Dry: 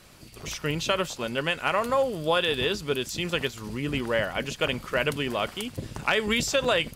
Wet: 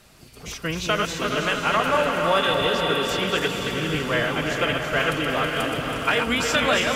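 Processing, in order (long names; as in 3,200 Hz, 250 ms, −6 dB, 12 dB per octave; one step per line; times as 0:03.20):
feedback delay that plays each chunk backwards 162 ms, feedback 68%, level −5 dB
dynamic equaliser 1,300 Hz, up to +5 dB, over −40 dBFS, Q 1.2
phase-vocoder pitch shift with formants kept +1.5 semitones
feedback delay with all-pass diffusion 503 ms, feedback 49%, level −5 dB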